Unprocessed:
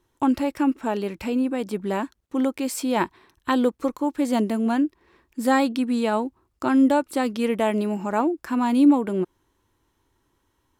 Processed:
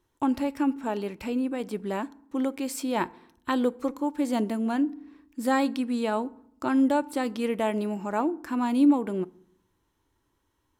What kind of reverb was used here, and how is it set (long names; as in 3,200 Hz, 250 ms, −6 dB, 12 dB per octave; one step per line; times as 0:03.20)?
feedback delay network reverb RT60 0.67 s, low-frequency decay 1.45×, high-frequency decay 0.6×, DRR 18 dB
level −4.5 dB